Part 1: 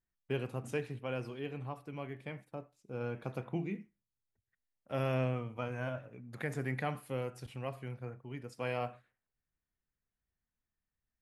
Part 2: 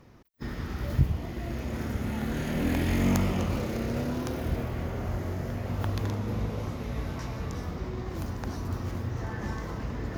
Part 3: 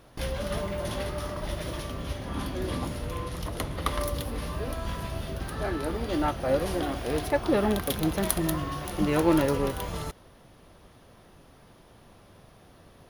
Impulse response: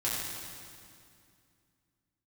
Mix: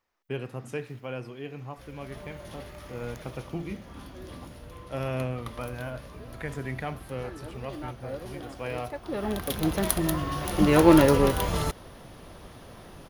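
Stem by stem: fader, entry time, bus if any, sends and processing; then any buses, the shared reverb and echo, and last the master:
+2.0 dB, 0.00 s, no send, dry
-17.0 dB, 0.00 s, no send, HPF 800 Hz 12 dB/oct
-1.5 dB, 1.60 s, no send, AGC gain up to 9 dB; auto duck -19 dB, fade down 1.55 s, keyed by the first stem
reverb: off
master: dry

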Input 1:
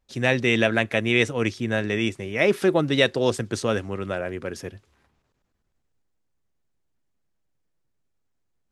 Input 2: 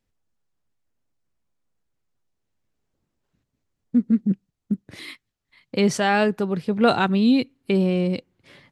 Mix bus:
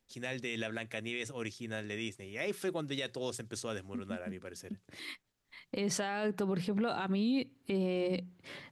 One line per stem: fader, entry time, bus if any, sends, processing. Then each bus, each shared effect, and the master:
-15.5 dB, 0.00 s, no send, high shelf 4300 Hz +11 dB
+2.5 dB, 0.00 s, no send, low shelf 170 Hz -5.5 dB; compressor, threshold -26 dBFS, peak gain reduction 12.5 dB; auto duck -15 dB, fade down 0.30 s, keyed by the first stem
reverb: off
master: notches 60/120/180 Hz; limiter -24.5 dBFS, peak gain reduction 12 dB

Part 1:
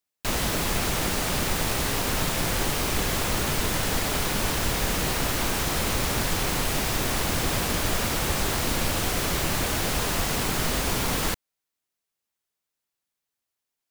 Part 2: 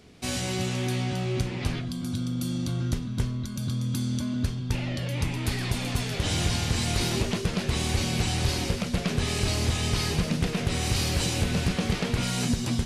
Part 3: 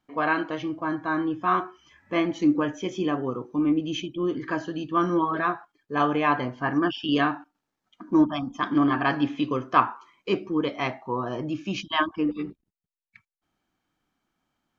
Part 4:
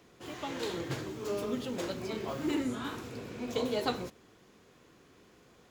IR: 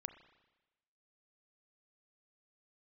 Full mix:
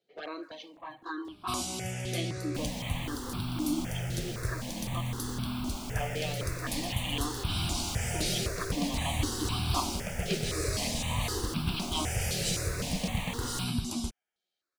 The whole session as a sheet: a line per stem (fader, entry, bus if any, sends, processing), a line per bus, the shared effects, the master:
-11.5 dB, 2.30 s, no send, running maximum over 3 samples
-4.0 dB, 1.25 s, no send, high shelf 4700 Hz +5.5 dB
-7.0 dB, 0.00 s, muted 5.01–5.81, no send, HPF 270 Hz 24 dB/oct; bell 4000 Hz +14.5 dB 0.75 oct; envelope flanger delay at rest 11.1 ms, full sweep at -20 dBFS
-14.5 dB, 0.00 s, no send, median filter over 25 samples; HPF 420 Hz 6 dB/oct; compressor, threshold -40 dBFS, peak gain reduction 10 dB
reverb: off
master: step phaser 3.9 Hz 280–1900 Hz

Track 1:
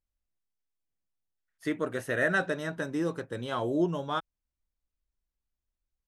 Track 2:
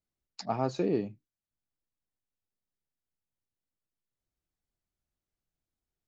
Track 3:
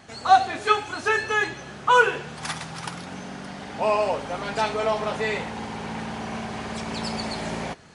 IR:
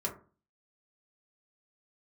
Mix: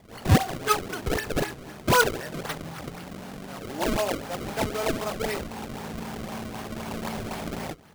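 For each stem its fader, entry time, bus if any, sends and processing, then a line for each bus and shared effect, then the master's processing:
-9.0 dB, 0.00 s, no send, tremolo 0.8 Hz, depth 90%
-11.0 dB, 0.00 s, no send, dry
-3.0 dB, 0.00 s, no send, dry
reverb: off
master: decimation with a swept rate 29×, swing 160% 3.9 Hz

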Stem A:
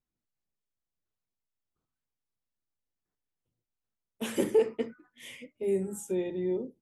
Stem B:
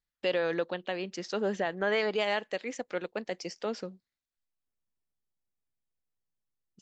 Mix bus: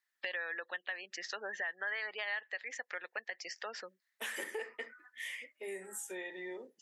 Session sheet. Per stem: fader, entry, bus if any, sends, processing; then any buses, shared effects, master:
+2.5 dB, 0.00 s, no send, dry
+2.0 dB, 0.00 s, no send, spectral gate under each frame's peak -30 dB strong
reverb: off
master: HPF 870 Hz 12 dB/oct; bell 1800 Hz +14 dB 0.35 oct; compressor 3:1, threshold -40 dBFS, peak gain reduction 15 dB

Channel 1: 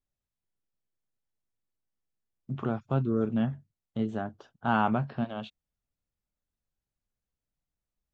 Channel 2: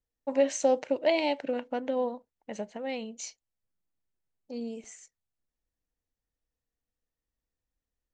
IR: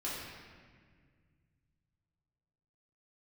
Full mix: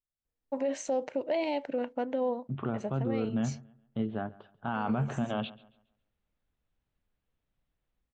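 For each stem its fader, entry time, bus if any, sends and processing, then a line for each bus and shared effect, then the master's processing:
4.69 s -11 dB -> 4.93 s -3 dB, 0.00 s, no send, echo send -21.5 dB, steep low-pass 3700 Hz; AGC gain up to 10 dB
+0.5 dB, 0.25 s, no send, no echo send, high shelf 2400 Hz -8.5 dB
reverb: off
echo: feedback echo 0.138 s, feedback 32%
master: limiter -21.5 dBFS, peak gain reduction 12.5 dB

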